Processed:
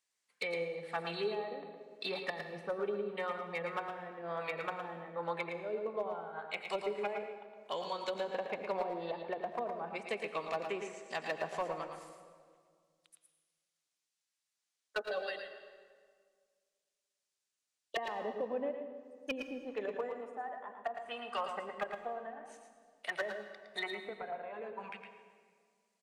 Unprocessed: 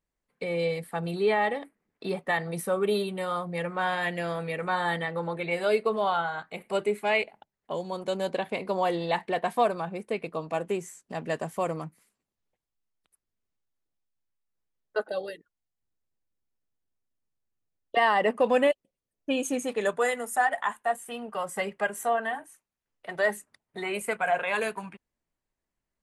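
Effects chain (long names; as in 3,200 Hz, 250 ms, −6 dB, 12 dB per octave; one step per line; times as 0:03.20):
meter weighting curve ITU-R 468
treble cut that deepens with the level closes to 370 Hz, closed at −25 dBFS
gain into a clipping stage and back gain 26 dB
single-tap delay 112 ms −7 dB
on a send at −9 dB: convolution reverb RT60 1.9 s, pre-delay 82 ms
on the sum: level −2 dB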